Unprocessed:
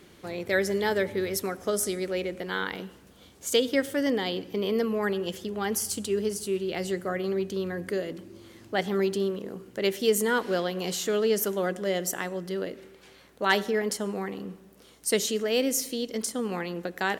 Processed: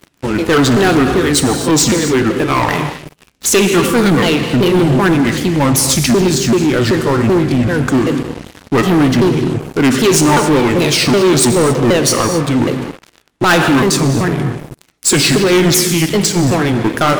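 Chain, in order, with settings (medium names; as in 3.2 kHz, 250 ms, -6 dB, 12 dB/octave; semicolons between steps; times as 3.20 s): sawtooth pitch modulation -9.5 st, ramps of 384 ms; gated-style reverb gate 300 ms flat, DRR 8.5 dB; waveshaping leveller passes 5; trim +3 dB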